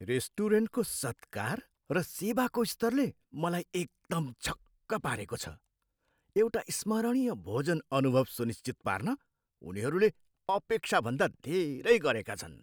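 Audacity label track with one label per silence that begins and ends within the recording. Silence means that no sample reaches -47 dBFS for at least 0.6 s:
5.550000	6.360000	silence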